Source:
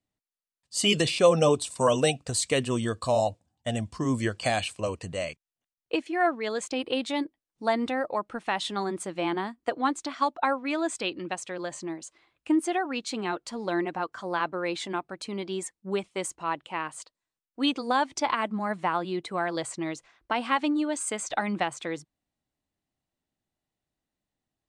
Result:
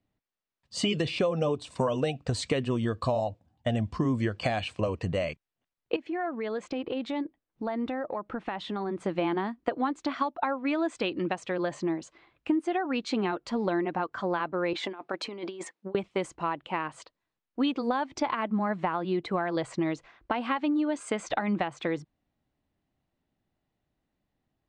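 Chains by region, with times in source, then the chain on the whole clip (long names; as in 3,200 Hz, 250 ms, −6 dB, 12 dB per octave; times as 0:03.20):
0:05.96–0:09.05: high-shelf EQ 3,600 Hz −7.5 dB + downward compressor 3 to 1, threshold −38 dBFS
0:14.73–0:15.95: high-shelf EQ 9,000 Hz −2 dB + compressor whose output falls as the input rises −37 dBFS, ratio −0.5 + high-pass filter 360 Hz
whole clip: Bessel low-pass filter 2,900 Hz, order 2; downward compressor 6 to 1, threshold −32 dBFS; low-shelf EQ 410 Hz +3.5 dB; level +5.5 dB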